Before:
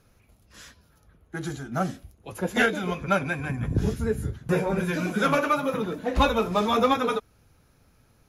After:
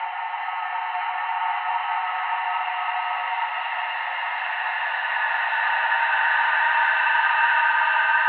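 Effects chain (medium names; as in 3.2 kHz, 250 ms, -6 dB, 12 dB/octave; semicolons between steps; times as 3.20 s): Paulstretch 7.2×, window 1.00 s, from 4.36 s; mistuned SSB +360 Hz 470–2800 Hz; trim +5.5 dB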